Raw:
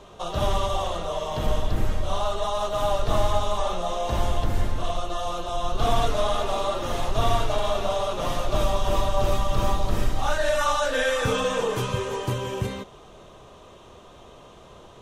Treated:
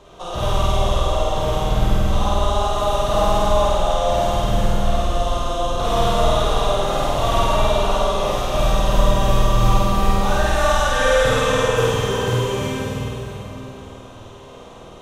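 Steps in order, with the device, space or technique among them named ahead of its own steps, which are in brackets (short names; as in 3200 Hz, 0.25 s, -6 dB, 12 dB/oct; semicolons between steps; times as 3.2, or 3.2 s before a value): tunnel (flutter echo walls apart 8.6 m, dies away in 1.2 s; reverb RT60 3.6 s, pre-delay 32 ms, DRR -1.5 dB); gain -1 dB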